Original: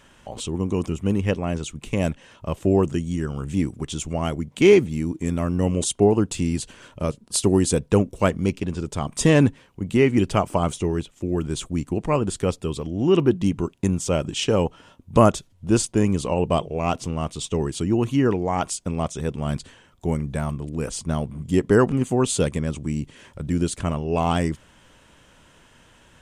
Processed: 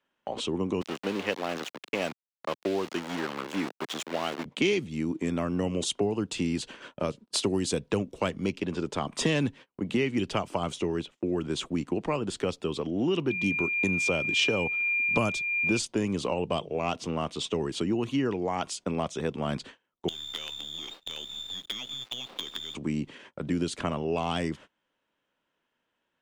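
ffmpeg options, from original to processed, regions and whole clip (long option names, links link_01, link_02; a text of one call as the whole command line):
ffmpeg -i in.wav -filter_complex "[0:a]asettb=1/sr,asplit=3[link_01][link_02][link_03];[link_01]atrim=end=0.814[link_04];[link_02]atrim=start=0.81:end=4.45,asetpts=PTS-STARTPTS,afade=type=in:duration=0.004:curve=qsin,afade=type=out:start_time=3.636:duration=0.004:curve=qsin,aeval=exprs='val(0)*gte(abs(val(0)),0.0376)':channel_layout=same,highpass=frequency=490:poles=1[link_05];[link_03]atrim=start=4.446[link_06];[link_04][link_05]acrossfade=duration=0.004:curve1=hsin:curve2=qsin[link_07];[link_07][link_06]acrossfade=duration=0.004:curve1=qsin:curve2=hsin,asettb=1/sr,asplit=3[link_08][link_09][link_10];[link_08]atrim=end=13.304[link_11];[link_09]atrim=start=13.3:end=15.79,asetpts=PTS-STARTPTS,afade=type=in:duration=0.004:curve=qsin,afade=type=out:start_time=2.486:duration=0.004:curve=qsin,agate=range=-33dB:threshold=-42dB:ratio=3:release=100:detection=peak,aeval=exprs='val(0)+0.0501*sin(2*PI*2400*n/s)':channel_layout=same[link_12];[link_10]atrim=start=15.786[link_13];[link_11][link_12]acrossfade=duration=0.004:curve1=hsin:curve2=qsin[link_14];[link_14][link_13]acrossfade=duration=0.004:curve1=qsin:curve2=hsin,asettb=1/sr,asplit=3[link_15][link_16][link_17];[link_15]atrim=end=20.084[link_18];[link_16]atrim=start=20.08:end=22.75,asetpts=PTS-STARTPTS,afade=type=in:duration=0.004:curve=qsin,afade=type=out:start_time=2.666:duration=0.004:curve=qsin,lowpass=frequency=3100:width_type=q:width=0.5098,lowpass=frequency=3100:width_type=q:width=0.6013,lowpass=frequency=3100:width_type=q:width=0.9,lowpass=frequency=3100:width_type=q:width=2.563,afreqshift=-3700,acompressor=threshold=-29dB:ratio=20:attack=3.2:release=140:knee=1:detection=peak,acrusher=bits=5:dc=4:mix=0:aa=0.000001[link_19];[link_17]atrim=start=22.746[link_20];[link_18][link_19]acrossfade=duration=0.004:curve1=hsin:curve2=qsin[link_21];[link_21][link_20]acrossfade=duration=0.004:curve1=qsin:curve2=hsin,acrossover=split=200 4900:gain=0.126 1 0.158[link_22][link_23][link_24];[link_22][link_23][link_24]amix=inputs=3:normalize=0,acrossover=split=140|3000[link_25][link_26][link_27];[link_26]acompressor=threshold=-29dB:ratio=8[link_28];[link_25][link_28][link_27]amix=inputs=3:normalize=0,agate=range=-27dB:threshold=-47dB:ratio=16:detection=peak,volume=3dB" out.wav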